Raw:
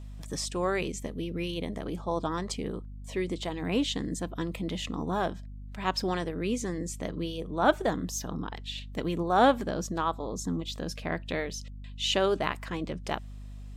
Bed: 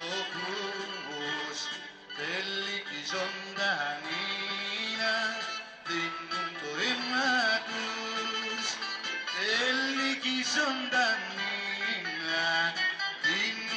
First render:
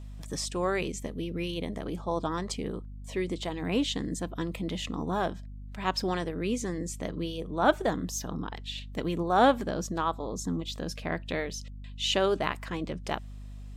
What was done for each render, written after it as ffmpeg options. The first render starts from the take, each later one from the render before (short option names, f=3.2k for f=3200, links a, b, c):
-af anull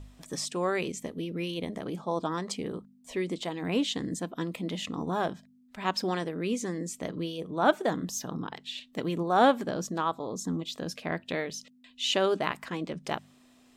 -af "bandreject=f=50:t=h:w=4,bandreject=f=100:t=h:w=4,bandreject=f=150:t=h:w=4,bandreject=f=200:t=h:w=4"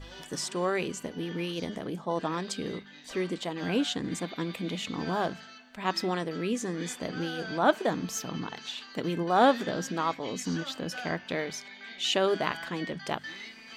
-filter_complex "[1:a]volume=-13.5dB[a];[0:a][a]amix=inputs=2:normalize=0"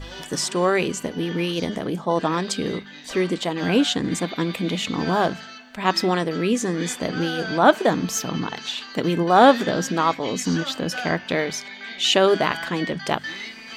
-af "volume=9dB,alimiter=limit=-3dB:level=0:latency=1"